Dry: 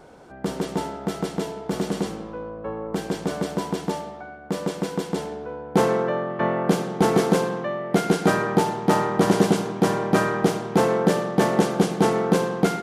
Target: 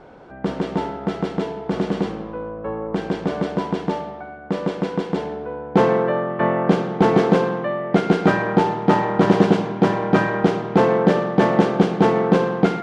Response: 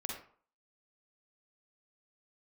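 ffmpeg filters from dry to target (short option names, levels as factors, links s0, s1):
-af "lowpass=3100,bandreject=f=78.03:t=h:w=4,bandreject=f=156.06:t=h:w=4,bandreject=f=234.09:t=h:w=4,bandreject=f=312.12:t=h:w=4,bandreject=f=390.15:t=h:w=4,bandreject=f=468.18:t=h:w=4,bandreject=f=546.21:t=h:w=4,bandreject=f=624.24:t=h:w=4,bandreject=f=702.27:t=h:w=4,bandreject=f=780.3:t=h:w=4,bandreject=f=858.33:t=h:w=4,bandreject=f=936.36:t=h:w=4,bandreject=f=1014.39:t=h:w=4,bandreject=f=1092.42:t=h:w=4,bandreject=f=1170.45:t=h:w=4,bandreject=f=1248.48:t=h:w=4,bandreject=f=1326.51:t=h:w=4,bandreject=f=1404.54:t=h:w=4,bandreject=f=1482.57:t=h:w=4,bandreject=f=1560.6:t=h:w=4,bandreject=f=1638.63:t=h:w=4,bandreject=f=1716.66:t=h:w=4,bandreject=f=1794.69:t=h:w=4,bandreject=f=1872.72:t=h:w=4,bandreject=f=1950.75:t=h:w=4,bandreject=f=2028.78:t=h:w=4,bandreject=f=2106.81:t=h:w=4,bandreject=f=2184.84:t=h:w=4,bandreject=f=2262.87:t=h:w=4,bandreject=f=2340.9:t=h:w=4,volume=1.58"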